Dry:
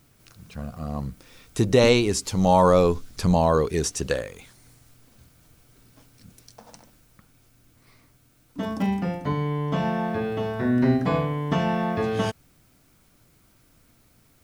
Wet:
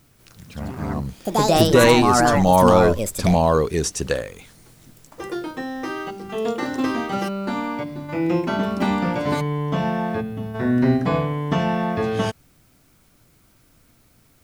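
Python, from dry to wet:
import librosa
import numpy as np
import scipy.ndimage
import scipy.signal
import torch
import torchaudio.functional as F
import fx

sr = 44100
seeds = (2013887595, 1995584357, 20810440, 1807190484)

y = fx.spec_box(x, sr, start_s=10.21, length_s=0.34, low_hz=280.0, high_hz=9400.0, gain_db=-11)
y = fx.echo_pitch(y, sr, ms=188, semitones=5, count=2, db_per_echo=-3.0)
y = y * 10.0 ** (2.5 / 20.0)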